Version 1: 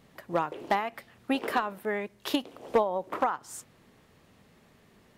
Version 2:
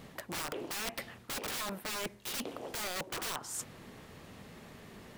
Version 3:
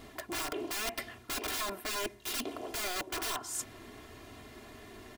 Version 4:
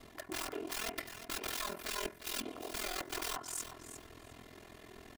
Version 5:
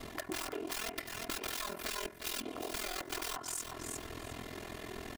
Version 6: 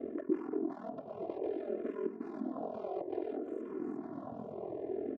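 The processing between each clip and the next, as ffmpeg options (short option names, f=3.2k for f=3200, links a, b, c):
-af "aeval=exprs='(mod(33.5*val(0)+1,2)-1)/33.5':c=same,areverse,acompressor=threshold=-45dB:ratio=6,areverse,volume=8.5dB"
-af "aecho=1:1:2.9:0.82"
-af "bandreject=f=76.88:t=h:w=4,bandreject=f=153.76:t=h:w=4,bandreject=f=230.64:t=h:w=4,bandreject=f=307.52:t=h:w=4,bandreject=f=384.4:t=h:w=4,bandreject=f=461.28:t=h:w=4,bandreject=f=538.16:t=h:w=4,bandreject=f=615.04:t=h:w=4,bandreject=f=691.92:t=h:w=4,bandreject=f=768.8:t=h:w=4,bandreject=f=845.68:t=h:w=4,bandreject=f=922.56:t=h:w=4,bandreject=f=999.44:t=h:w=4,bandreject=f=1.07632k:t=h:w=4,bandreject=f=1.1532k:t=h:w=4,bandreject=f=1.23008k:t=h:w=4,bandreject=f=1.30696k:t=h:w=4,bandreject=f=1.38384k:t=h:w=4,bandreject=f=1.46072k:t=h:w=4,bandreject=f=1.5376k:t=h:w=4,bandreject=f=1.61448k:t=h:w=4,bandreject=f=1.69136k:t=h:w=4,bandreject=f=1.76824k:t=h:w=4,bandreject=f=1.84512k:t=h:w=4,bandreject=f=1.922k:t=h:w=4,bandreject=f=1.99888k:t=h:w=4,bandreject=f=2.07576k:t=h:w=4,bandreject=f=2.15264k:t=h:w=4,bandreject=f=2.22952k:t=h:w=4,bandreject=f=2.3064k:t=h:w=4,aeval=exprs='val(0)*sin(2*PI*21*n/s)':c=same,aecho=1:1:355|710:0.282|0.0451,volume=-1dB"
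-af "acompressor=threshold=-46dB:ratio=6,volume=9.5dB"
-filter_complex "[0:a]asuperpass=centerf=350:order=4:qfactor=0.91,aecho=1:1:912:0.422,asplit=2[a][b];[b]afreqshift=-0.59[c];[a][c]amix=inputs=2:normalize=1,volume=11dB"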